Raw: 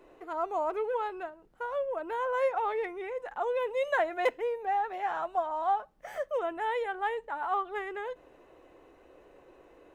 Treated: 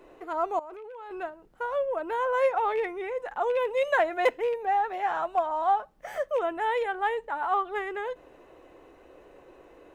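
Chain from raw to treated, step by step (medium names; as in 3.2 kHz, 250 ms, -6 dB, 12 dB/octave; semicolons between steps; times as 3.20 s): rattle on loud lows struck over -45 dBFS, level -37 dBFS; 0.59–1.11 s: level held to a coarse grid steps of 23 dB; trim +4 dB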